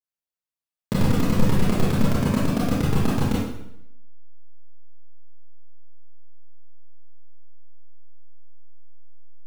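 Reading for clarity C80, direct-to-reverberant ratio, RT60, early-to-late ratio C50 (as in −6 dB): 3.5 dB, −7.5 dB, 0.80 s, −1.0 dB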